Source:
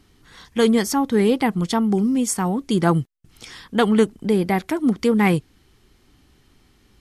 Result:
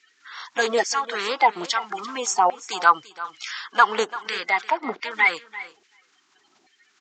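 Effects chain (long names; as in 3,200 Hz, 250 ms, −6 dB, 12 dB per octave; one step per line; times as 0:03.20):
spectral magnitudes quantised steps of 30 dB
auto-filter high-pass saw down 1.2 Hz 640–2,000 Hz
far-end echo of a speakerphone 380 ms, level −29 dB
downsampling to 16,000 Hz
in parallel at −2 dB: downward compressor, threshold −30 dBFS, peak gain reduction 18 dB
0:04.70–0:05.11: on the sum: high-frequency loss of the air 220 metres
on a send: single-tap delay 341 ms −16.5 dB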